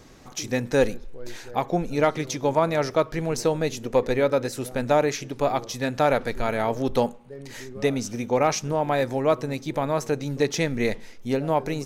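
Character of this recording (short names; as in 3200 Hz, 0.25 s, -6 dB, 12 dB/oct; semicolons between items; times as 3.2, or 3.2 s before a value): noise floor -44 dBFS; spectral tilt -5.0 dB/oct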